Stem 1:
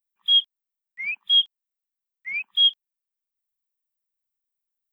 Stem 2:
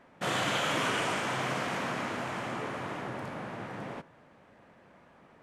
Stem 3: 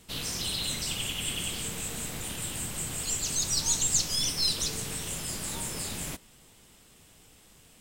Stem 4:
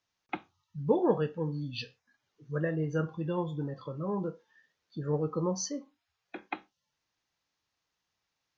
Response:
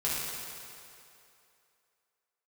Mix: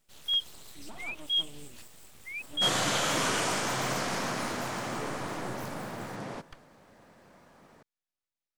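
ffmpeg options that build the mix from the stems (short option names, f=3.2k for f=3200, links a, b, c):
-filter_complex "[0:a]volume=-10.5dB[a];[1:a]highshelf=f=3.7k:t=q:w=1.5:g=6.5,adelay=2400,volume=1dB[b];[2:a]volume=-15.5dB[c];[3:a]lowshelf=f=160:g=8.5,volume=-12dB[d];[c][d]amix=inputs=2:normalize=0,aeval=exprs='abs(val(0))':c=same,alimiter=level_in=9dB:limit=-24dB:level=0:latency=1:release=133,volume=-9dB,volume=0dB[e];[a][b][e]amix=inputs=3:normalize=0"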